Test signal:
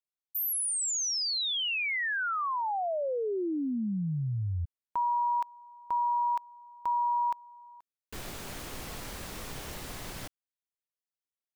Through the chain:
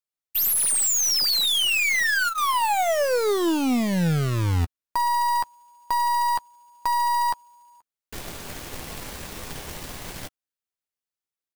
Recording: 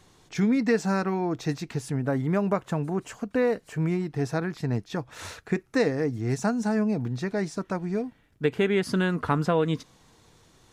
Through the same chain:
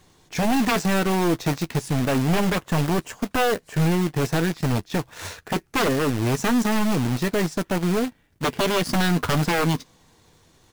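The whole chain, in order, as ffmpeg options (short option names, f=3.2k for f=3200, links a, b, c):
-filter_complex "[0:a]bandreject=f=1.3k:w=18,aeval=exprs='0.282*sin(PI/2*3.98*val(0)/0.282)':c=same,acrusher=bits=3:mode=log:mix=0:aa=0.000001,aeval=exprs='0.266*(cos(1*acos(clip(val(0)/0.266,-1,1)))-cos(1*PI/2))+0.0299*(cos(2*acos(clip(val(0)/0.266,-1,1)))-cos(2*PI/2))+0.0422*(cos(3*acos(clip(val(0)/0.266,-1,1)))-cos(3*PI/2))+0.00596*(cos(4*acos(clip(val(0)/0.266,-1,1)))-cos(4*PI/2))+0.00473*(cos(7*acos(clip(val(0)/0.266,-1,1)))-cos(7*PI/2))':c=same,asplit=2[a][b];[b]adelay=12,volume=-13dB[c];[a][c]amix=inputs=2:normalize=0,volume=-7.5dB"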